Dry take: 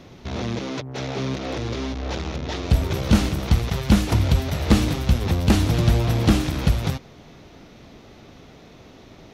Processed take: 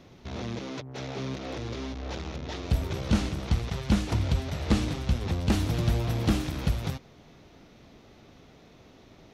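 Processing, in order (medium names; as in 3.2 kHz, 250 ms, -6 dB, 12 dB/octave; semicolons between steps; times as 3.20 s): 2.90–5.52 s: low-pass 9.2 kHz 12 dB/octave; trim -7.5 dB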